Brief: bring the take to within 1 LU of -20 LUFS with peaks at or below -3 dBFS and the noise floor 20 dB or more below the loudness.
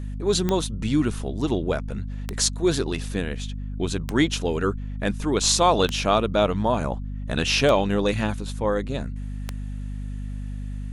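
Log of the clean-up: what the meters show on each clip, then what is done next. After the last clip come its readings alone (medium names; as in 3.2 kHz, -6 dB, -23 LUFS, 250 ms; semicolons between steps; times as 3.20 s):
clicks found 6; hum 50 Hz; highest harmonic 250 Hz; hum level -28 dBFS; loudness -24.5 LUFS; peak level -5.0 dBFS; loudness target -20.0 LUFS
-> de-click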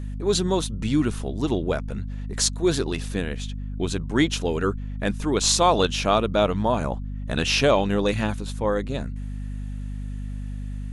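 clicks found 0; hum 50 Hz; highest harmonic 250 Hz; hum level -28 dBFS
-> de-hum 50 Hz, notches 5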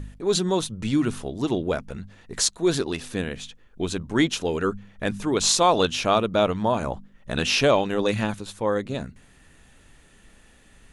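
hum not found; loudness -24.0 LUFS; peak level -5.5 dBFS; loudness target -20.0 LUFS
-> trim +4 dB; peak limiter -3 dBFS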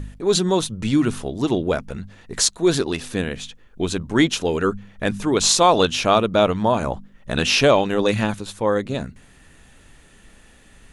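loudness -20.0 LUFS; peak level -3.0 dBFS; noise floor -50 dBFS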